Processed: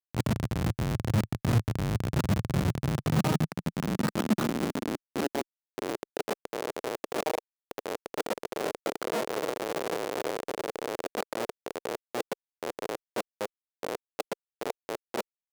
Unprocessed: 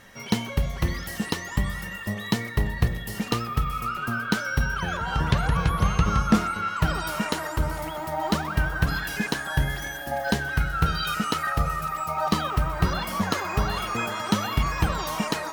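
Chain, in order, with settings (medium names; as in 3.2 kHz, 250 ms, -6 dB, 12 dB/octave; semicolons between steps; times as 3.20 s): reverse the whole clip; Schmitt trigger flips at -21 dBFS; high-pass sweep 110 Hz -> 460 Hz, 2.42–6.38 s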